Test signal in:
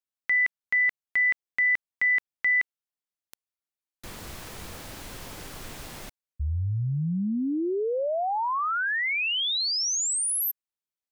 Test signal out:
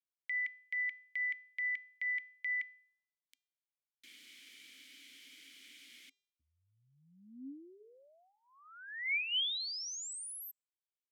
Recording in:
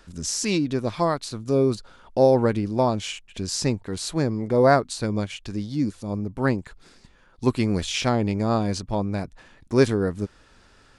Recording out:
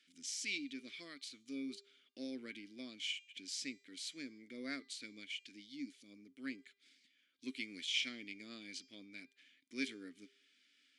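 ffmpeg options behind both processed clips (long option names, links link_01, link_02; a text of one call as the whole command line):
ffmpeg -i in.wav -filter_complex "[0:a]asplit=3[link_01][link_02][link_03];[link_01]bandpass=frequency=270:width_type=q:width=8,volume=0dB[link_04];[link_02]bandpass=frequency=2290:width_type=q:width=8,volume=-6dB[link_05];[link_03]bandpass=frequency=3010:width_type=q:width=8,volume=-9dB[link_06];[link_04][link_05][link_06]amix=inputs=3:normalize=0,aderivative,bandreject=frequency=399.9:width_type=h:width=4,bandreject=frequency=799.8:width_type=h:width=4,bandreject=frequency=1199.7:width_type=h:width=4,bandreject=frequency=1599.6:width_type=h:width=4,bandreject=frequency=1999.5:width_type=h:width=4,bandreject=frequency=2399.4:width_type=h:width=4,bandreject=frequency=2799.3:width_type=h:width=4,bandreject=frequency=3199.2:width_type=h:width=4,bandreject=frequency=3599.1:width_type=h:width=4,bandreject=frequency=3999:width_type=h:width=4,bandreject=frequency=4398.9:width_type=h:width=4,bandreject=frequency=4798.8:width_type=h:width=4,bandreject=frequency=5198.7:width_type=h:width=4,bandreject=frequency=5598.6:width_type=h:width=4,bandreject=frequency=5998.5:width_type=h:width=4,bandreject=frequency=6398.4:width_type=h:width=4,bandreject=frequency=6798.3:width_type=h:width=4,bandreject=frequency=7198.2:width_type=h:width=4,bandreject=frequency=7598.1:width_type=h:width=4,bandreject=frequency=7998:width_type=h:width=4,volume=11dB" out.wav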